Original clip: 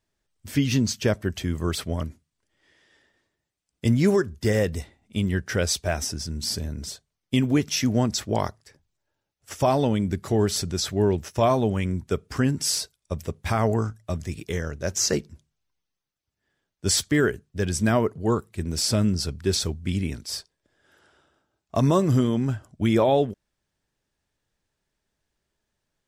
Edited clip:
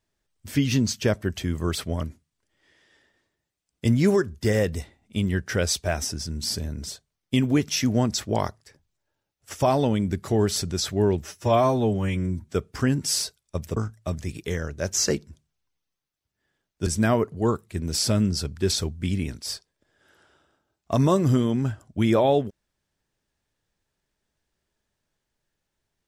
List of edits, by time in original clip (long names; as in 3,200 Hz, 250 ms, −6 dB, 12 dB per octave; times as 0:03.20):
0:11.23–0:12.10: time-stretch 1.5×
0:13.33–0:13.79: remove
0:16.89–0:17.70: remove